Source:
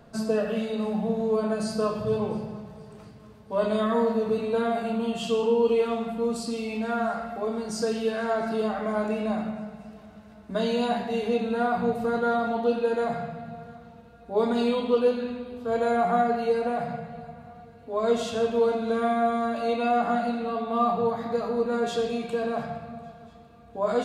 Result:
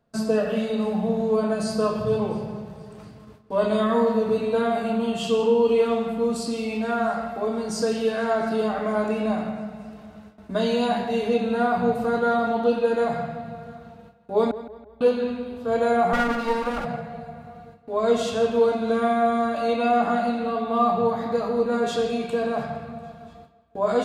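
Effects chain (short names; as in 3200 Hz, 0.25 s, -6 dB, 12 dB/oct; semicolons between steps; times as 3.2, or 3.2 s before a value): 16.13–16.85 minimum comb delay 3.6 ms; gate with hold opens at -39 dBFS; 14.51–15.01 inverse Chebyshev band-stop 390–5900 Hz, stop band 80 dB; on a send: tape echo 0.168 s, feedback 45%, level -13.5 dB, low-pass 4100 Hz; on the sum: gain +3 dB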